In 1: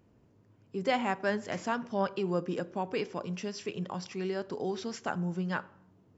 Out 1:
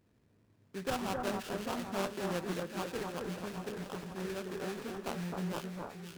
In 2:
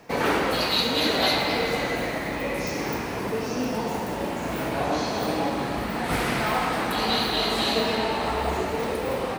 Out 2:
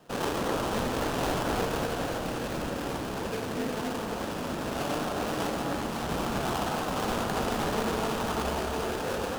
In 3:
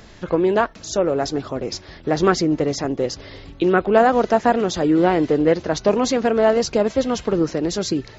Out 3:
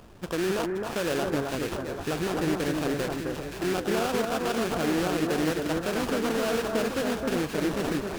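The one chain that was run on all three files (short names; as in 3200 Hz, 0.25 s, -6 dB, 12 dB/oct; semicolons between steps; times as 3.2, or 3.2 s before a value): limiter -14 dBFS; sample-rate reducer 2100 Hz, jitter 20%; echo with dull and thin repeats by turns 0.262 s, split 1700 Hz, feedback 72%, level -3 dB; Doppler distortion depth 0.29 ms; gain -6.5 dB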